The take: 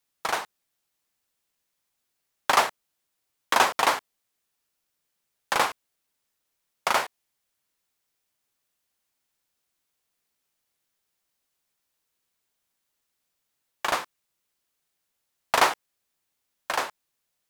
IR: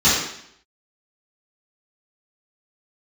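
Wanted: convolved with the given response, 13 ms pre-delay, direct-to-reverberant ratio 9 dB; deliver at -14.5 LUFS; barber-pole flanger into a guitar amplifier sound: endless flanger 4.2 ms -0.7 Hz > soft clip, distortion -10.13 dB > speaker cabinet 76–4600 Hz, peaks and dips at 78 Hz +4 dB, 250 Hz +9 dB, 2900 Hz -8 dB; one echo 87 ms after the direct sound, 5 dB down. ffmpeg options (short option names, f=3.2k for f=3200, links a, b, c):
-filter_complex "[0:a]aecho=1:1:87:0.562,asplit=2[a][b];[1:a]atrim=start_sample=2205,adelay=13[c];[b][c]afir=irnorm=-1:irlink=0,volume=-30.5dB[d];[a][d]amix=inputs=2:normalize=0,asplit=2[e][f];[f]adelay=4.2,afreqshift=-0.7[g];[e][g]amix=inputs=2:normalize=1,asoftclip=threshold=-22dB,highpass=76,equalizer=f=78:t=q:w=4:g=4,equalizer=f=250:t=q:w=4:g=9,equalizer=f=2.9k:t=q:w=4:g=-8,lowpass=f=4.6k:w=0.5412,lowpass=f=4.6k:w=1.3066,volume=18dB"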